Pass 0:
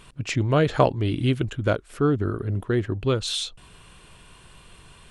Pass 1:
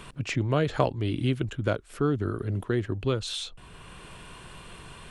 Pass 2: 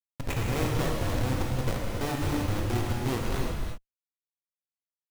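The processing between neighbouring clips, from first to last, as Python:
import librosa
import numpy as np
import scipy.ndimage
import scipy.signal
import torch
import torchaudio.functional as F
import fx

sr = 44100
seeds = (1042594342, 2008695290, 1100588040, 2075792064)

y1 = fx.band_squash(x, sr, depth_pct=40)
y1 = y1 * 10.0 ** (-4.0 / 20.0)
y2 = fx.schmitt(y1, sr, flips_db=-26.0)
y2 = fx.rev_gated(y2, sr, seeds[0], gate_ms=390, shape='flat', drr_db=-3.0)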